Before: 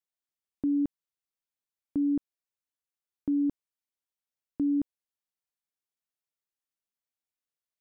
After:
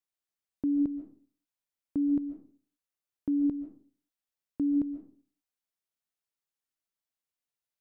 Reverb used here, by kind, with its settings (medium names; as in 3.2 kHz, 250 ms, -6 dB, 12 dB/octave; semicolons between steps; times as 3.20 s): algorithmic reverb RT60 0.45 s, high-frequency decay 0.5×, pre-delay 100 ms, DRR 8.5 dB; trim -1 dB